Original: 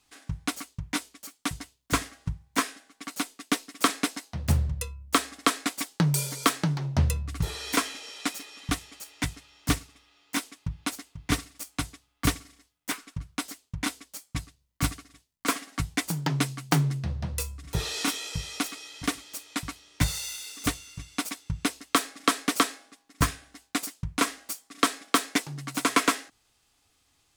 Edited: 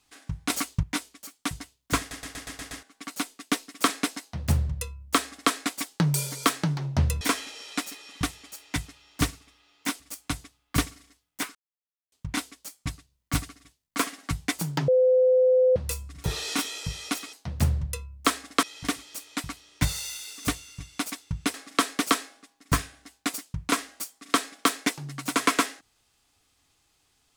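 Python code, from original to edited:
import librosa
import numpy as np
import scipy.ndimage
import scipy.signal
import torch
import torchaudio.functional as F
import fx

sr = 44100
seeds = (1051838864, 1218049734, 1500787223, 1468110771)

y = fx.edit(x, sr, fx.clip_gain(start_s=0.5, length_s=0.33, db=10.0),
    fx.stutter_over(start_s=1.99, slice_s=0.12, count=7),
    fx.duplicate(start_s=4.21, length_s=1.3, to_s=18.82),
    fx.cut(start_s=7.21, length_s=0.48),
    fx.cut(start_s=10.48, length_s=1.01),
    fx.silence(start_s=13.04, length_s=0.57),
    fx.bleep(start_s=16.37, length_s=0.88, hz=511.0, db=-16.0),
    fx.cut(start_s=21.73, length_s=0.3), tone=tone)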